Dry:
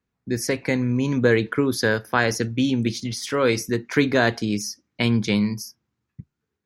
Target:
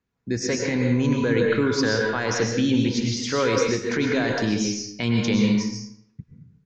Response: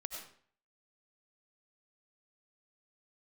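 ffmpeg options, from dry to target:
-filter_complex "[0:a]alimiter=limit=-14dB:level=0:latency=1:release=28[a];[1:a]atrim=start_sample=2205,asetrate=33075,aresample=44100[b];[a][b]afir=irnorm=-1:irlink=0,aresample=16000,aresample=44100,volume=2.5dB"

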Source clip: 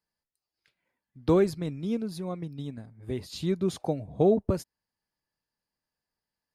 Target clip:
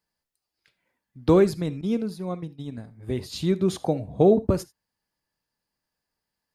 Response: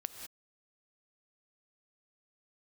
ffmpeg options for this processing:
-filter_complex "[0:a]asettb=1/sr,asplit=3[a][b][c];[a]atrim=end=1.814[d];[b]atrim=start=1.81:end=2.72,asetpts=PTS-STARTPTS,afade=t=in:d=0.004:c=qsin,afade=t=out:st=0.906:d=0.004:c=qsin,agate=range=-33dB:threshold=-31dB:ratio=3:detection=peak[e];[c]atrim=start=2.716[f];[d][e]acrossfade=d=0.004:c1=hsin:c2=qsin[g];[g][f]acrossfade=d=0.004:c1=qsin:c2=hsin[h];[1:a]atrim=start_sample=2205,atrim=end_sample=3969[i];[h][i]afir=irnorm=-1:irlink=0,volume=7dB"

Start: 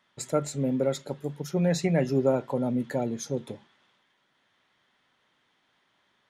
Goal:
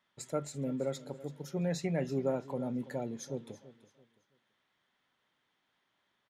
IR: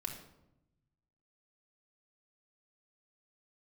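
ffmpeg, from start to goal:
-af "aecho=1:1:333|666|999:0.141|0.0438|0.0136,volume=-8.5dB"

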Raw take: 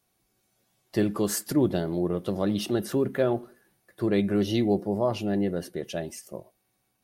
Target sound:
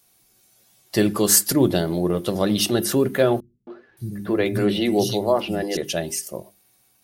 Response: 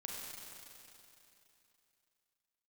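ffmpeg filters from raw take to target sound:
-filter_complex "[0:a]highshelf=f=2.9k:g=10,bandreject=f=50:t=h:w=6,bandreject=f=100:t=h:w=6,bandreject=f=150:t=h:w=6,bandreject=f=200:t=h:w=6,bandreject=f=250:t=h:w=6,bandreject=f=300:t=h:w=6,bandreject=f=350:t=h:w=6,bandreject=f=400:t=h:w=6,asettb=1/sr,asplit=3[a][b][c];[a]atrim=end=3.404[d];[b]atrim=start=3.4:end=5.77,asetpts=PTS-STARTPTS,afade=t=in:d=0.004:c=qsin,afade=t=out:st=2.366:d=0.004:c=qsin,acrossover=split=190|3500[e][f][g];[f]adelay=270[h];[g]adelay=570[i];[e][h][i]amix=inputs=3:normalize=0,atrim=end_sample=104517[j];[c]atrim=start=5.766[k];[d][j]acrossfade=d=0.004:c1=hsin:c2=qsin[l];[l][k]acrossfade=d=0.004:c1=qsin:c2=hsin,volume=6dB"

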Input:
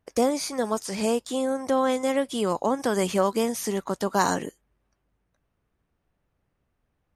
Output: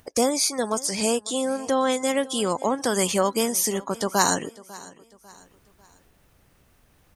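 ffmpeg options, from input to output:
-filter_complex "[0:a]afftdn=nr=24:nf=-45,highshelf=f=3.1k:g=12,acompressor=mode=upward:threshold=-30dB:ratio=2.5,asplit=2[a][b];[b]aecho=0:1:547|1094|1641:0.0944|0.0378|0.0151[c];[a][c]amix=inputs=2:normalize=0"

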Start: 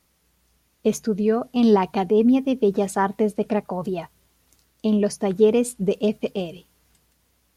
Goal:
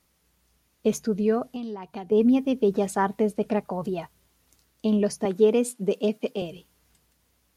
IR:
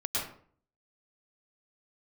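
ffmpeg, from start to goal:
-filter_complex "[0:a]asettb=1/sr,asplit=3[a][b][c];[a]atrim=end=1.424[d];[b]atrim=start=1.42:end=2.12,asetpts=PTS-STARTPTS,afade=t=in:d=0.004:c=qsin,afade=t=out:st=0.696:d=0.004:c=qsin,acompressor=threshold=-30dB:ratio=8[e];[c]atrim=start=2.116[f];[d][e]acrossfade=d=0.004:c1=hsin:c2=qsin[g];[g][f]acrossfade=d=0.004:c1=qsin:c2=hsin,asettb=1/sr,asplit=3[h][i][j];[h]atrim=end=5.254[k];[i]atrim=start=5.25:end=6.42,asetpts=PTS-STARTPTS,afade=t=in:d=0.004:c=qsin,afade=t=out:st=1.166:d=0.004:c=qsin,highpass=f=190:w=0.5412,highpass=f=190:w=1.3066[l];[j]atrim=start=6.416[m];[k][l]acrossfade=d=0.004:c1=hsin:c2=qsin[n];[n][m]acrossfade=d=0.004:c1=qsin:c2=hsin,volume=-2.5dB"

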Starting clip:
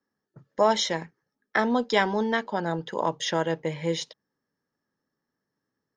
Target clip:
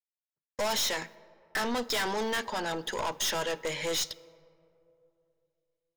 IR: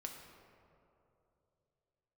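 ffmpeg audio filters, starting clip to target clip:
-filter_complex "[0:a]highpass=250,agate=range=-46dB:threshold=-48dB:ratio=16:detection=peak,crystalizer=i=6:c=0,aeval=exprs='(tanh(28.2*val(0)+0.25)-tanh(0.25))/28.2':c=same,asplit=2[a][b];[1:a]atrim=start_sample=2205[c];[b][c]afir=irnorm=-1:irlink=0,volume=-10.5dB[d];[a][d]amix=inputs=2:normalize=0"

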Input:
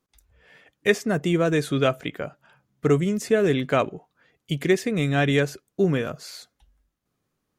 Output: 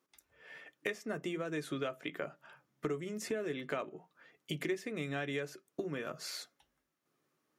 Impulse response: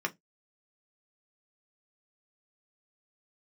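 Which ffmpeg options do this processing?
-filter_complex "[0:a]highpass=190,acompressor=threshold=-33dB:ratio=10,asplit=2[a][b];[1:a]atrim=start_sample=2205[c];[b][c]afir=irnorm=-1:irlink=0,volume=-9dB[d];[a][d]amix=inputs=2:normalize=0,volume=-4dB"

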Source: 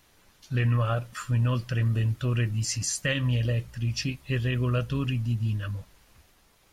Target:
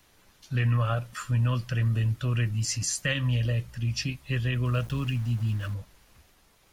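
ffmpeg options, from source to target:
-filter_complex "[0:a]acrossover=split=270|490|3000[a][b][c][d];[b]acompressor=threshold=-49dB:ratio=6[e];[a][e][c][d]amix=inputs=4:normalize=0,asettb=1/sr,asplit=3[f][g][h];[f]atrim=end=4.654[i];[g]atrim=start=4.65:end=5.74,asetpts=PTS-STARTPTS,afade=t=in:d=0.004:c=qsin,afade=t=out:st=1.086:d=0.004:c=qsin,aeval=exprs='val(0)*gte(abs(val(0)),0.00794)':c=same[j];[h]atrim=start=5.736[k];[i][j]acrossfade=d=0.004:c1=hsin:c2=qsin[l];[l][k]acrossfade=d=0.004:c1=qsin:c2=hsin"

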